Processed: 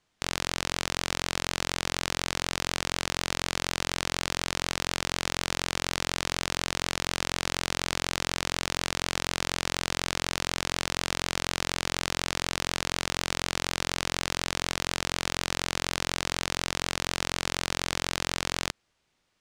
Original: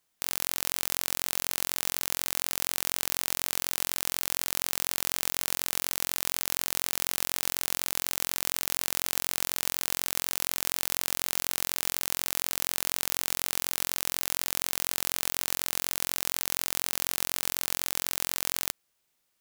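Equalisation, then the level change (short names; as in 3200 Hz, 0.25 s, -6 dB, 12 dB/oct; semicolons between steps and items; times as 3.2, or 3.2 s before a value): air absorption 96 m; low shelf 200 Hz +6.5 dB; +6.5 dB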